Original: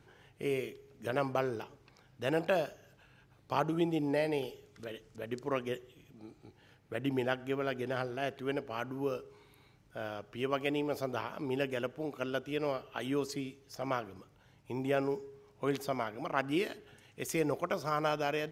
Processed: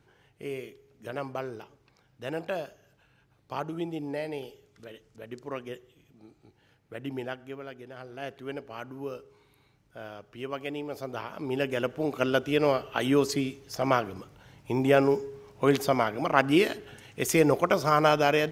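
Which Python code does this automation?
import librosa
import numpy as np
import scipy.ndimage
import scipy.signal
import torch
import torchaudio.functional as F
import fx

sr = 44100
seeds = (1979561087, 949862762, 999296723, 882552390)

y = fx.gain(x, sr, db=fx.line((7.22, -2.5), (7.95, -10.0), (8.21, -2.0), (10.91, -2.0), (12.17, 10.0)))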